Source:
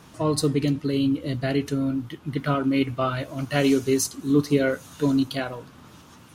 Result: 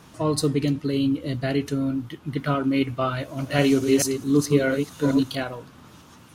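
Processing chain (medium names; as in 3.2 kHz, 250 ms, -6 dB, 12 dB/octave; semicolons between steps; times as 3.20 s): 3.15–5.43 s: chunks repeated in reverse 218 ms, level -5 dB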